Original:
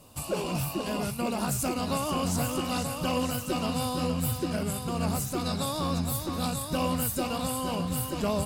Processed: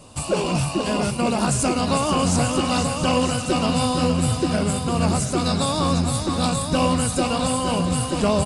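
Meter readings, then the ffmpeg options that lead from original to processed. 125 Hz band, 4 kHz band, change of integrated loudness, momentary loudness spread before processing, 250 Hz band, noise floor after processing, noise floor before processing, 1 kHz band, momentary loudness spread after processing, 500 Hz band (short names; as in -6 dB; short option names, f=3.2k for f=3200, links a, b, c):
+8.5 dB, +9.0 dB, +8.5 dB, 2 LU, +8.5 dB, -28 dBFS, -37 dBFS, +8.5 dB, 3 LU, +8.5 dB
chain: -filter_complex "[0:a]asplit=2[a][b];[b]aecho=0:1:681:0.251[c];[a][c]amix=inputs=2:normalize=0,aresample=22050,aresample=44100,volume=8.5dB"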